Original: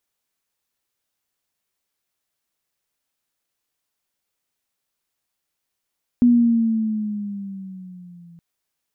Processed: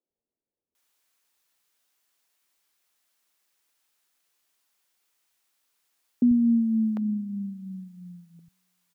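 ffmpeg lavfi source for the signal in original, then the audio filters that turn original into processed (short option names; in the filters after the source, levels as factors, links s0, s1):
-f lavfi -i "aevalsrc='pow(10,(-9.5-33*t/2.17)/20)*sin(2*PI*244*2.17/(-6.5*log(2)/12)*(exp(-6.5*log(2)/12*t/2.17)-1))':d=2.17:s=44100"
-filter_complex "[0:a]lowshelf=f=210:g=-12,asplit=2[s0][s1];[s1]alimiter=level_in=1.33:limit=0.0631:level=0:latency=1,volume=0.75,volume=1[s2];[s0][s2]amix=inputs=2:normalize=0,acrossover=split=150|530[s3][s4][s5];[s3]adelay=90[s6];[s5]adelay=750[s7];[s6][s4][s7]amix=inputs=3:normalize=0"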